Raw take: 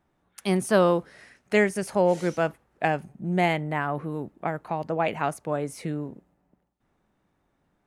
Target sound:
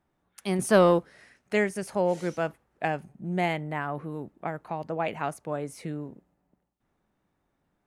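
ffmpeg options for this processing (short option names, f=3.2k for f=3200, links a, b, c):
-filter_complex "[0:a]asettb=1/sr,asplit=3[a][b][c];[a]atrim=end=0.594[d];[b]atrim=start=0.59:end=0.99,asetpts=PTS-STARTPTS,afade=t=in:d=0.004:c=qsin,afade=t=out:st=0.396:d=0.004:c=qsin,acontrast=35[e];[c]atrim=start=0.986[f];[d][e]acrossfade=d=0.004:c1=hsin:c2=qsin[g];[g][f]acrossfade=d=0.004:c1=qsin:c2=hsin,volume=-4dB"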